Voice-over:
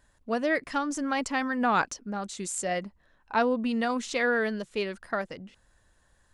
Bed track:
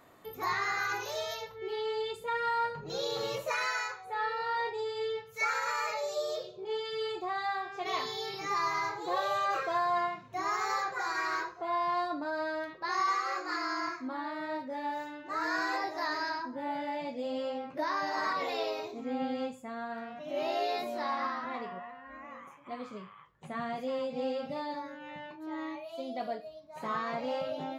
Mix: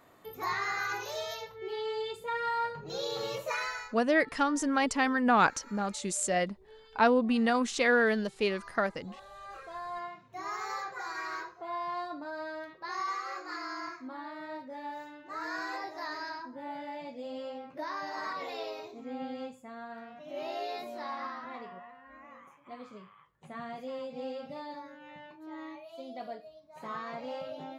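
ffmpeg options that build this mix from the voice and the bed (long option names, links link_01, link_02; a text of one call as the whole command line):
ffmpeg -i stem1.wav -i stem2.wav -filter_complex "[0:a]adelay=3650,volume=1dB[link_01];[1:a]volume=14dB,afade=type=out:start_time=3.56:duration=0.43:silence=0.112202,afade=type=in:start_time=9.3:duration=1.26:silence=0.177828[link_02];[link_01][link_02]amix=inputs=2:normalize=0" out.wav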